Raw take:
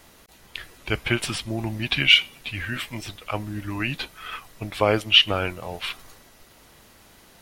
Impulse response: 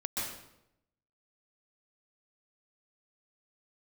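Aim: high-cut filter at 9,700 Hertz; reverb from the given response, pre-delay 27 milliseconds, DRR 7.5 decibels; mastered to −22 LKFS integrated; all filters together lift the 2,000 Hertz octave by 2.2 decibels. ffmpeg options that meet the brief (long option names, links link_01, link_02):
-filter_complex "[0:a]lowpass=9700,equalizer=frequency=2000:width_type=o:gain=3,asplit=2[link_01][link_02];[1:a]atrim=start_sample=2205,adelay=27[link_03];[link_02][link_03]afir=irnorm=-1:irlink=0,volume=-12dB[link_04];[link_01][link_04]amix=inputs=2:normalize=0,volume=-1.5dB"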